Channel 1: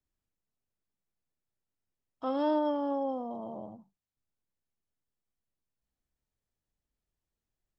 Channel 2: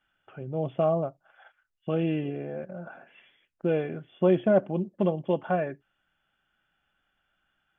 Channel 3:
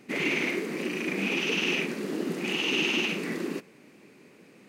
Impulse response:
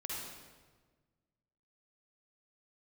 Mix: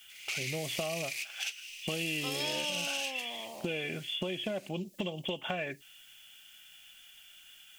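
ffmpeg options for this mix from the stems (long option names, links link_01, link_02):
-filter_complex "[0:a]equalizer=frequency=170:width=0.53:gain=-10,volume=-2dB[link_01];[1:a]acompressor=threshold=-29dB:ratio=6,volume=2.5dB,asplit=2[link_02][link_03];[2:a]asoftclip=type=tanh:threshold=-25dB,highpass=800,acompressor=threshold=-37dB:ratio=2.5,volume=-14dB,asplit=2[link_04][link_05];[link_05]volume=-18.5dB[link_06];[link_03]apad=whole_len=206707[link_07];[link_04][link_07]sidechaingate=range=-33dB:threshold=-51dB:ratio=16:detection=peak[link_08];[3:a]atrim=start_sample=2205[link_09];[link_06][link_09]afir=irnorm=-1:irlink=0[link_10];[link_01][link_02][link_08][link_10]amix=inputs=4:normalize=0,highshelf=frequency=2000:gain=11.5,aexciter=amount=6.7:drive=4.3:freq=2100,acompressor=threshold=-35dB:ratio=2.5"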